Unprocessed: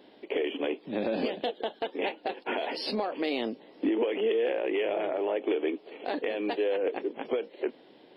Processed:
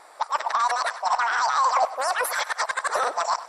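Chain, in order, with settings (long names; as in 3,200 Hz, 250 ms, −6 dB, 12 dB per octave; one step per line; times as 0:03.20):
played backwards from end to start
notch filter 2,800 Hz, Q 5.8
on a send: tape delay 228 ms, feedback 59%, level −14.5 dB, low-pass 3,100 Hz
on the sum: harmonic generator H 3 −33 dB, 4 −43 dB, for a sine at −18 dBFS
wrong playback speed 33 rpm record played at 78 rpm
level +6.5 dB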